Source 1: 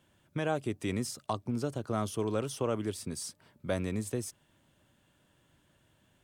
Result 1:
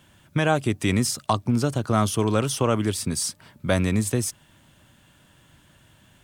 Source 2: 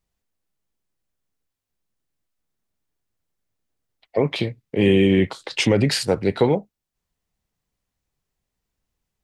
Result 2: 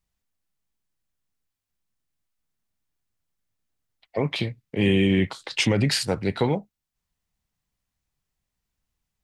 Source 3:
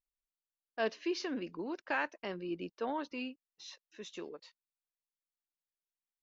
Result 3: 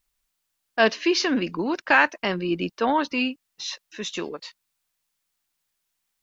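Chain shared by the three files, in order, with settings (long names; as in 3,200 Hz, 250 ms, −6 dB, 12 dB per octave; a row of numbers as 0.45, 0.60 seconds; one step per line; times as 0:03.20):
parametric band 440 Hz −6 dB 1.4 octaves
loudness normalisation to −24 LKFS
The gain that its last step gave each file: +13.5, −1.0, +17.5 decibels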